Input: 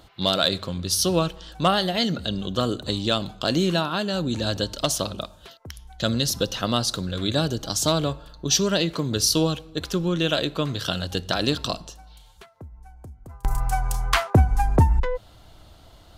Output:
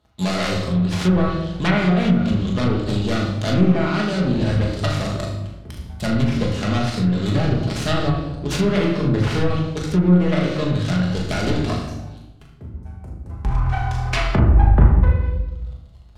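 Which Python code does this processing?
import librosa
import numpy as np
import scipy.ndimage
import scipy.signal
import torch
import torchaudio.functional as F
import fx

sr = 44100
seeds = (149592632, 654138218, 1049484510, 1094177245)

p1 = fx.self_delay(x, sr, depth_ms=0.43)
p2 = scipy.signal.sosfilt(scipy.signal.butter(4, 52.0, 'highpass', fs=sr, output='sos'), p1)
p3 = fx.low_shelf(p2, sr, hz=110.0, db=12.0)
p4 = fx.leveller(p3, sr, passes=3)
p5 = fx.high_shelf(p4, sr, hz=4900.0, db=-4.0)
p6 = p5 + fx.room_flutter(p5, sr, wall_m=6.7, rt60_s=0.39, dry=0)
p7 = fx.room_shoebox(p6, sr, seeds[0], volume_m3=440.0, walls='mixed', distance_m=1.4)
p8 = fx.env_lowpass_down(p7, sr, base_hz=1700.0, full_db=0.0)
y = p8 * 10.0 ** (-11.5 / 20.0)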